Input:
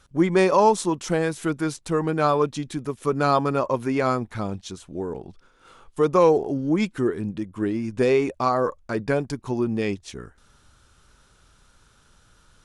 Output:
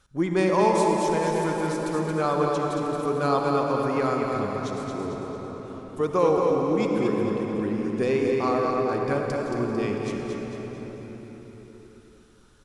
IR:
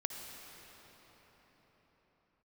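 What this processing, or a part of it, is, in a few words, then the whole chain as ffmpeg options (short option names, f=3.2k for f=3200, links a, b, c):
cathedral: -filter_complex "[0:a]aecho=1:1:224|448|672|896|1120:0.531|0.239|0.108|0.0484|0.0218[a];[1:a]atrim=start_sample=2205[b];[a][b]afir=irnorm=-1:irlink=0,volume=-4dB"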